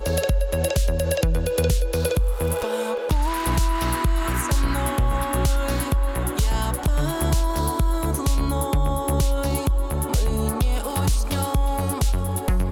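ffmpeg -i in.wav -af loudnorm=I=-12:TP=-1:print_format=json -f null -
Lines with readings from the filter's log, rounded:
"input_i" : "-23.4",
"input_tp" : "-10.5",
"input_lra" : "0.6",
"input_thresh" : "-33.4",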